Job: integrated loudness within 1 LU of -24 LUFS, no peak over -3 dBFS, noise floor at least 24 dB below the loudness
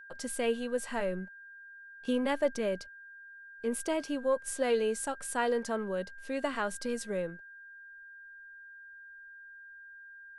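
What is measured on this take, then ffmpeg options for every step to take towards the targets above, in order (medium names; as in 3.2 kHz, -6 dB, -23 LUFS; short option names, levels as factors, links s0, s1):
steady tone 1.6 kHz; tone level -48 dBFS; loudness -33.0 LUFS; peak level -17.5 dBFS; loudness target -24.0 LUFS
-> -af "bandreject=f=1600:w=30"
-af "volume=2.82"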